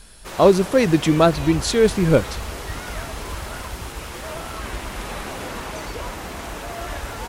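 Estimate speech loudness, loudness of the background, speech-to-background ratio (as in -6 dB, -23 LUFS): -17.5 LUFS, -31.5 LUFS, 14.0 dB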